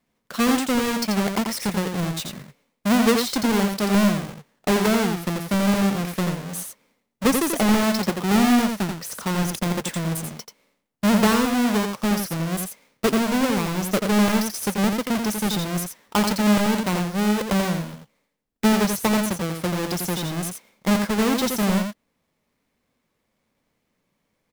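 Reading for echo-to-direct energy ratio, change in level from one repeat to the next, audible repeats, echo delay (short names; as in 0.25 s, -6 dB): -5.5 dB, no steady repeat, 1, 86 ms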